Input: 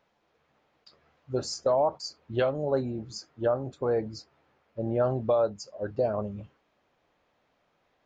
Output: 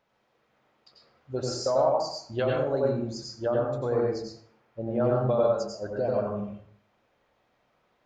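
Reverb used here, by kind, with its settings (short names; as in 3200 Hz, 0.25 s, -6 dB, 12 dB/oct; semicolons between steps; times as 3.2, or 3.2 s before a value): plate-style reverb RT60 0.6 s, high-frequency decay 0.65×, pre-delay 80 ms, DRR -2 dB; gain -2.5 dB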